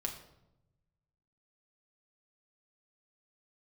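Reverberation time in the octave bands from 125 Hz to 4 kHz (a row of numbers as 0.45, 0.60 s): 1.8, 1.2, 0.95, 0.80, 0.60, 0.60 s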